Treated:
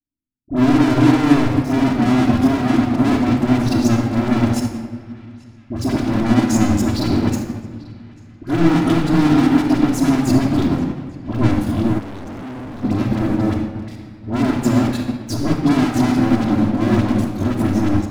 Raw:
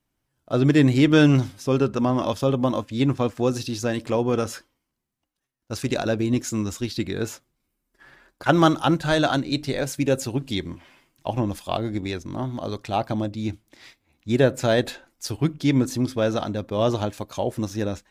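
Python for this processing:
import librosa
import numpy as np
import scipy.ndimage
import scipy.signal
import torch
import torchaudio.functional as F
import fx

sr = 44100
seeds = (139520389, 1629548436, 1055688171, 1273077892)

p1 = fx.level_steps(x, sr, step_db=12)
p2 = fx.low_shelf_res(p1, sr, hz=400.0, db=13.0, q=3.0)
p3 = 10.0 ** (-8.0 / 20.0) * np.tanh(p2 / 10.0 ** (-8.0 / 20.0))
p4 = fx.leveller(p3, sr, passes=5)
p5 = fx.dispersion(p4, sr, late='highs', ms=60.0, hz=1000.0)
p6 = p5 + fx.echo_banded(p5, sr, ms=841, feedback_pct=55, hz=2300.0, wet_db=-17, dry=0)
p7 = fx.room_shoebox(p6, sr, seeds[0], volume_m3=3700.0, walls='mixed', distance_m=3.0)
p8 = fx.clip_hard(p7, sr, threshold_db=-13.5, at=(11.98, 12.83), fade=0.02)
p9 = fx.upward_expand(p8, sr, threshold_db=-16.0, expansion=1.5)
y = p9 * librosa.db_to_amplitude(-8.0)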